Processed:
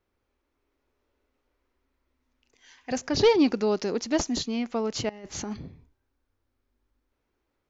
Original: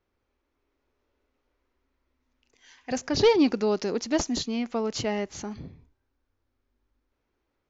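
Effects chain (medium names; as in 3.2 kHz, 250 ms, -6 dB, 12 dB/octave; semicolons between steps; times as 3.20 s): 5.09–5.57 s: compressor with a negative ratio -35 dBFS, ratio -0.5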